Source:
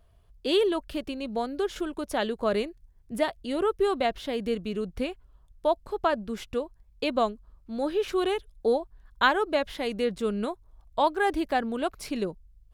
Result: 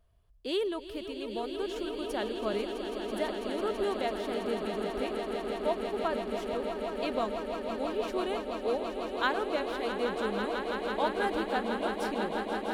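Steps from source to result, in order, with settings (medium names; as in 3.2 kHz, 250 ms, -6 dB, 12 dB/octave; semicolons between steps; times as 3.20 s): echo with a slow build-up 165 ms, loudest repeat 8, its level -10 dB; trim -7.5 dB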